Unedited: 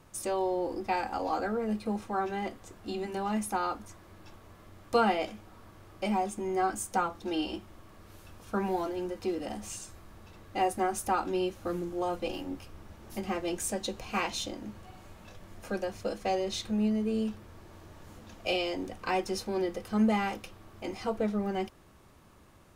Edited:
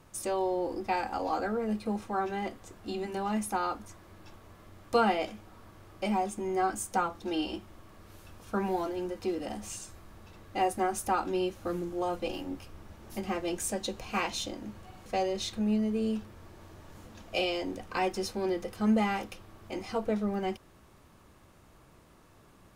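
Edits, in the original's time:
15.06–16.18 cut

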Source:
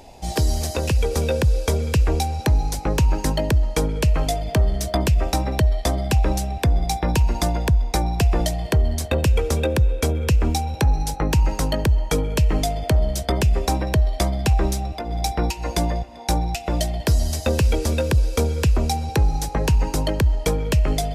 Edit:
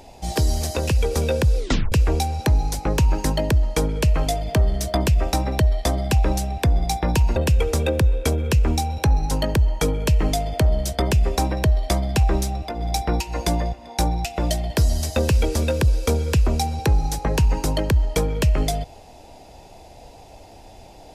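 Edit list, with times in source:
1.57 tape stop 0.35 s
7.36–9.13 cut
11.08–11.61 cut

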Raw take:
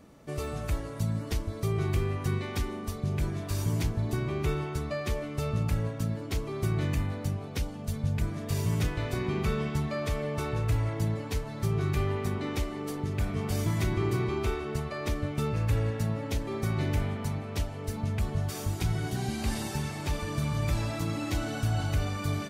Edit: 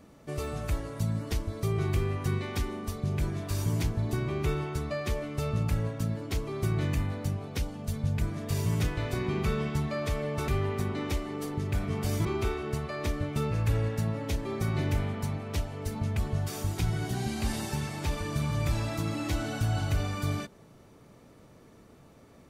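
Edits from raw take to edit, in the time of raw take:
10.48–11.94 cut
13.71–14.27 cut

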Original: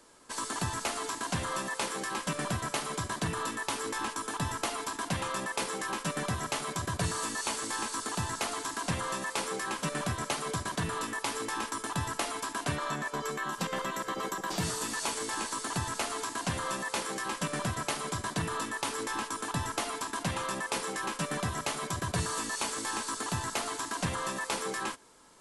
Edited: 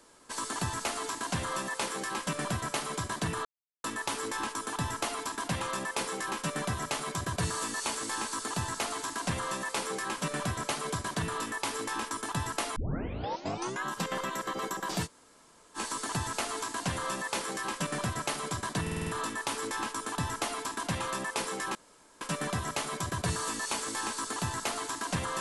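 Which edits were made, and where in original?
3.45 insert silence 0.39 s
12.37 tape start 1.09 s
14.66–15.38 room tone, crossfade 0.06 s
18.43 stutter 0.05 s, 6 plays
21.11 insert room tone 0.46 s

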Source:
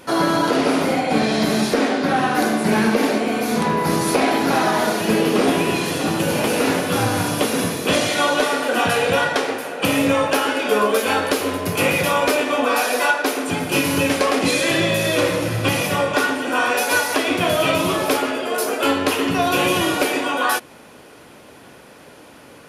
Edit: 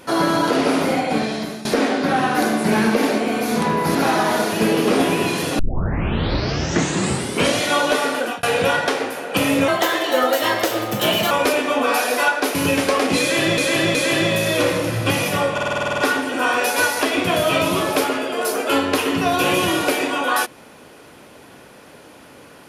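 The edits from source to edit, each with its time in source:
1–1.65 fade out, to -18.5 dB
3.95–4.43 cut
6.07 tape start 1.99 s
8.65–8.91 fade out
10.16–12.13 speed 121%
13.37–13.87 cut
14.53–14.9 loop, 3 plays
16.11 stutter 0.05 s, 10 plays

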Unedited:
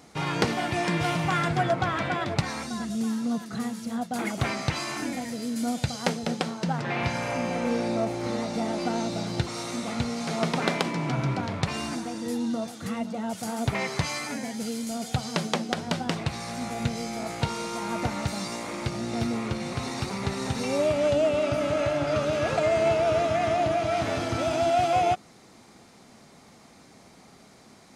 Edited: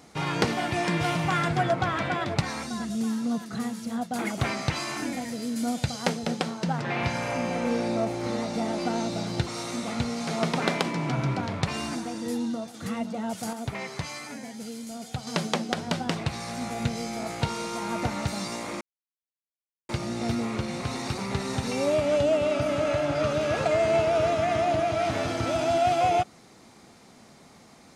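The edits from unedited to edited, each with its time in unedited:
12.38–12.74 fade out, to -6 dB
13.53–15.27 gain -6 dB
18.81 insert silence 1.08 s

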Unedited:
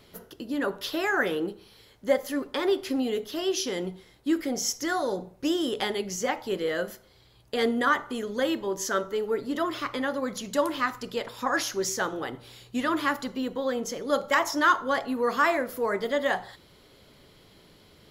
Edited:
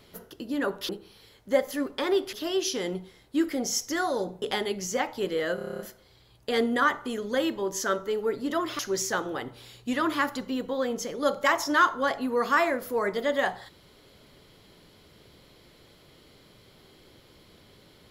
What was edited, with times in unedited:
0.89–1.45 cut
2.89–3.25 cut
5.34–5.71 cut
6.84 stutter 0.03 s, 9 plays
9.84–11.66 cut

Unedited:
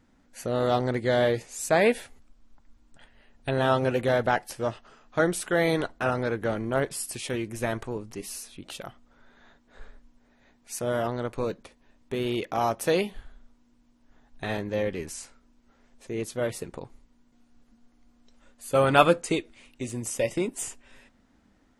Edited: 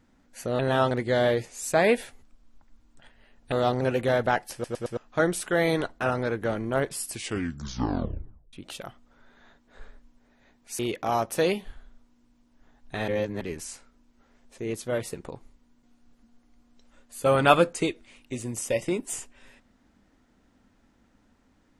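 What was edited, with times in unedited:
0.59–0.88 swap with 3.49–3.81
4.53 stutter in place 0.11 s, 4 plays
7.1 tape stop 1.43 s
10.79–12.28 cut
14.57–14.9 reverse

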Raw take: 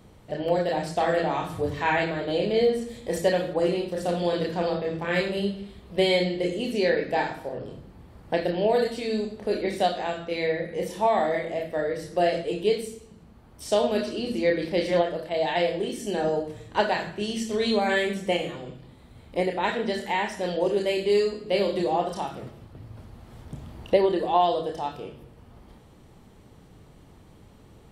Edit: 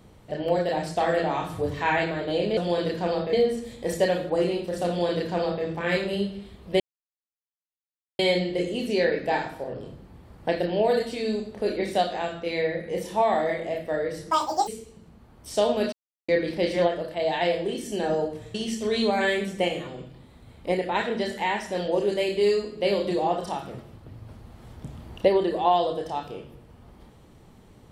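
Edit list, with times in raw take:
4.12–4.88 copy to 2.57
6.04 insert silence 1.39 s
12.16–12.82 speed 181%
14.07–14.43 mute
16.69–17.23 cut

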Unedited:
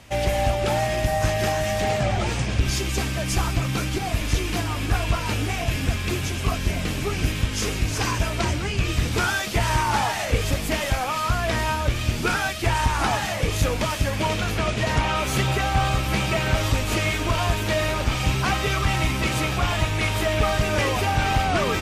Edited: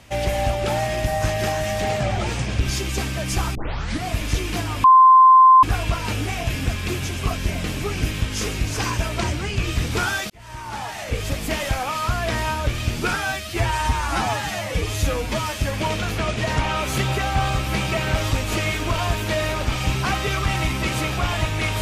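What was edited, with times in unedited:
3.55 tape start 0.52 s
4.84 add tone 1040 Hz -7 dBFS 0.79 s
9.51–10.76 fade in
12.37–14 stretch 1.5×

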